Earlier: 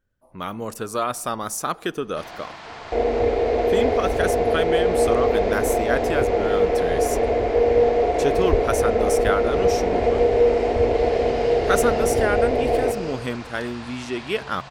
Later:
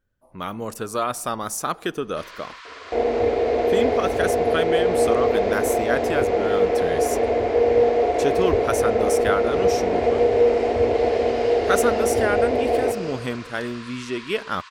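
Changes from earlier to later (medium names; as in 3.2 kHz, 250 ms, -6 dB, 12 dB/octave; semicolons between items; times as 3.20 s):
first sound: add brick-wall FIR high-pass 930 Hz; second sound: add high-pass 86 Hz 12 dB/octave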